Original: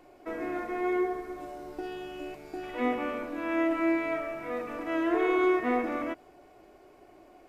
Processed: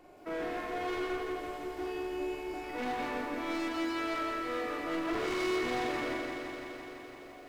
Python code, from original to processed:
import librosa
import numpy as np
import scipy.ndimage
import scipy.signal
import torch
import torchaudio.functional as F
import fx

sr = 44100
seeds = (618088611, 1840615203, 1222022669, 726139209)

y = fx.room_flutter(x, sr, wall_m=7.4, rt60_s=0.73)
y = np.clip(y, -10.0 ** (-31.0 / 20.0), 10.0 ** (-31.0 / 20.0))
y = fx.echo_crushed(y, sr, ms=169, feedback_pct=80, bits=11, wet_db=-6.5)
y = y * librosa.db_to_amplitude(-2.0)